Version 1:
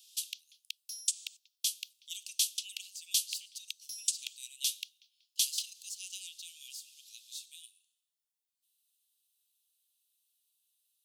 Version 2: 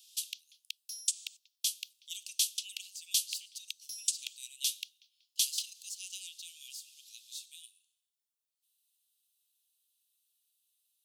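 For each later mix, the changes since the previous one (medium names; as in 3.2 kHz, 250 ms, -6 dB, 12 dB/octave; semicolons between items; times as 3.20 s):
no change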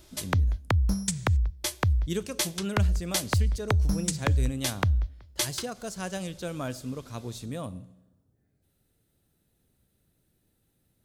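master: remove steep high-pass 2.7 kHz 72 dB/octave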